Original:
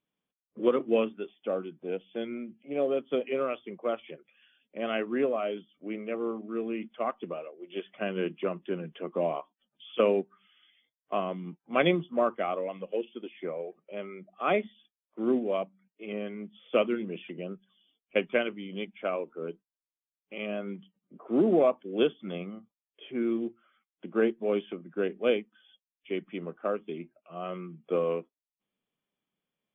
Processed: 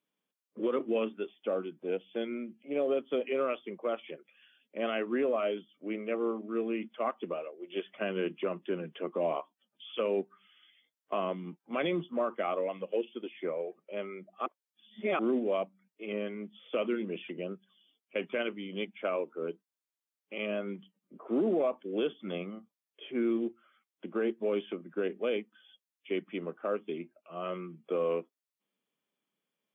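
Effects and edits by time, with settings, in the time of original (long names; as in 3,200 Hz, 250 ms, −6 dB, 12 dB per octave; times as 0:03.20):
0:14.46–0:15.19: reverse
whole clip: notch filter 730 Hz, Q 19; brickwall limiter −22 dBFS; high-pass filter 200 Hz 12 dB per octave; level +1 dB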